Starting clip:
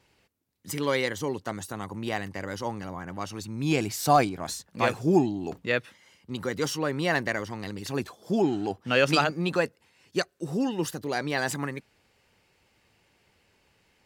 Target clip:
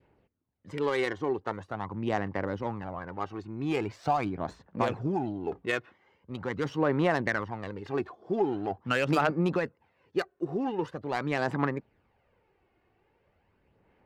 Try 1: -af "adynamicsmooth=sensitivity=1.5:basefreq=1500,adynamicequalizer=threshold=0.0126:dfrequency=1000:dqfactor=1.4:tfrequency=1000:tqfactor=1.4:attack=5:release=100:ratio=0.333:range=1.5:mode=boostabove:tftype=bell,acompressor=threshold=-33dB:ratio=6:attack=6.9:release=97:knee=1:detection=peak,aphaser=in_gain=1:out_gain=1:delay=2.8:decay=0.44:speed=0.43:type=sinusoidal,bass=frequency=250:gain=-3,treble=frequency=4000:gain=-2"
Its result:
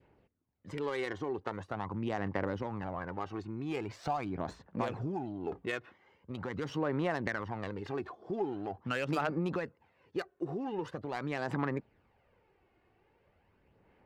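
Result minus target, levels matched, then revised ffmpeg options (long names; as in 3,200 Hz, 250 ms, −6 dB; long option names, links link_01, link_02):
downward compressor: peak gain reduction +7 dB
-af "adynamicsmooth=sensitivity=1.5:basefreq=1500,adynamicequalizer=threshold=0.0126:dfrequency=1000:dqfactor=1.4:tfrequency=1000:tqfactor=1.4:attack=5:release=100:ratio=0.333:range=1.5:mode=boostabove:tftype=bell,acompressor=threshold=-24.5dB:ratio=6:attack=6.9:release=97:knee=1:detection=peak,aphaser=in_gain=1:out_gain=1:delay=2.8:decay=0.44:speed=0.43:type=sinusoidal,bass=frequency=250:gain=-3,treble=frequency=4000:gain=-2"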